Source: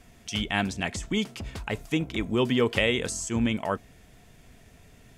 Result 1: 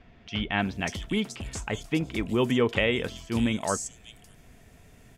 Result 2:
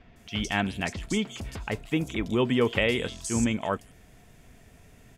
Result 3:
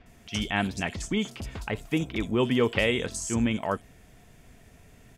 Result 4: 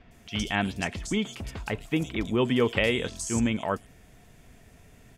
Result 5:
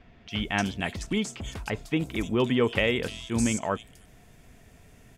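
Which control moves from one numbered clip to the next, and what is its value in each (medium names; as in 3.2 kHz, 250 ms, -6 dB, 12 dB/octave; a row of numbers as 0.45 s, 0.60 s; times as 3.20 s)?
bands offset in time, time: 590 ms, 160 ms, 60 ms, 110 ms, 300 ms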